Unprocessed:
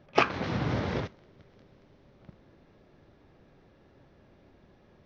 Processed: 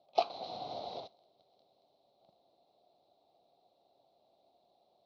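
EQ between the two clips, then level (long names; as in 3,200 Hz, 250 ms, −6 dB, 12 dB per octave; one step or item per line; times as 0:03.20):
pair of resonant band-passes 1,700 Hz, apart 2.5 octaves
+2.5 dB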